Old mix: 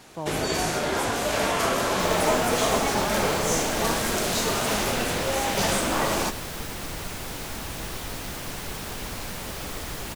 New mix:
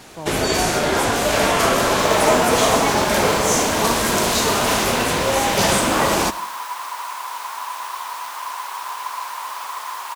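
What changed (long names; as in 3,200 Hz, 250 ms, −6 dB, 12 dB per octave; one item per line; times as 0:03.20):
first sound +7.0 dB
second sound: add high-pass with resonance 1,000 Hz, resonance Q 12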